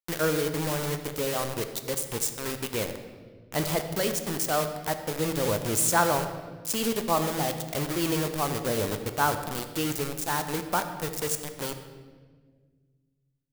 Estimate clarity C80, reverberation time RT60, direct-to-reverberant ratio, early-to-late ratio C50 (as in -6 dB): 10.0 dB, 1.6 s, 7.0 dB, 9.0 dB